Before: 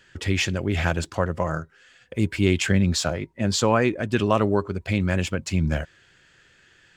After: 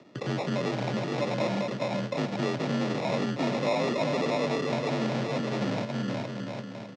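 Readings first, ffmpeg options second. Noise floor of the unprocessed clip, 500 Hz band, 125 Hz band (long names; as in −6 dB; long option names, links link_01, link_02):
−58 dBFS, −2.5 dB, −8.5 dB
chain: -filter_complex "[0:a]acompressor=threshold=-22dB:ratio=6,asoftclip=type=tanh:threshold=-28.5dB,equalizer=frequency=3900:width_type=o:width=1.3:gain=-14,acompressor=mode=upward:threshold=-56dB:ratio=2.5,asplit=2[link_01][link_02];[link_02]aecho=0:1:420|756|1025|1240|1412:0.631|0.398|0.251|0.158|0.1[link_03];[link_01][link_03]amix=inputs=2:normalize=0,acrusher=samples=29:mix=1:aa=0.000001,aeval=exprs='0.0376*(abs(mod(val(0)/0.0376+3,4)-2)-1)':channel_layout=same,highpass=130,equalizer=frequency=350:width_type=q:width=4:gain=-3,equalizer=frequency=540:width_type=q:width=4:gain=5,equalizer=frequency=1100:width_type=q:width=4:gain=-4,lowpass=frequency=5600:width=0.5412,lowpass=frequency=5600:width=1.3066,afreqshift=39,volume=7dB"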